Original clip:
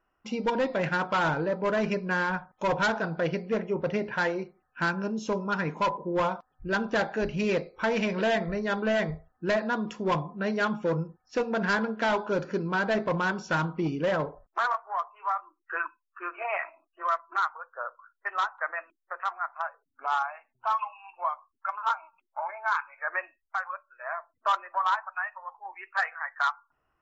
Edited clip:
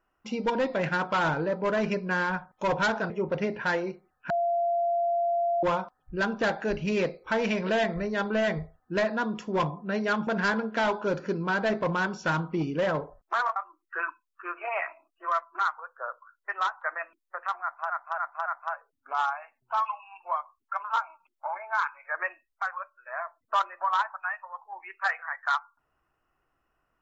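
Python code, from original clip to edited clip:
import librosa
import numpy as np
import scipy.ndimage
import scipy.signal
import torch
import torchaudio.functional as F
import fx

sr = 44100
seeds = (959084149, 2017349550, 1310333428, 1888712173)

y = fx.edit(x, sr, fx.cut(start_s=3.1, length_s=0.52),
    fx.bleep(start_s=4.82, length_s=1.33, hz=688.0, db=-23.0),
    fx.cut(start_s=10.79, length_s=0.73),
    fx.cut(start_s=14.81, length_s=0.52),
    fx.repeat(start_s=19.39, length_s=0.28, count=4), tone=tone)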